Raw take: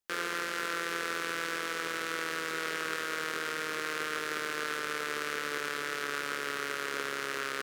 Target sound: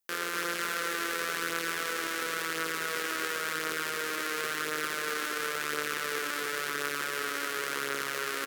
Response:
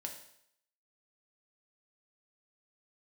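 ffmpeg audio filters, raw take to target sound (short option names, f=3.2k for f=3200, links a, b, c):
-af "highshelf=f=10k:g=11.5,aecho=1:1:215:0.596,atempo=0.9"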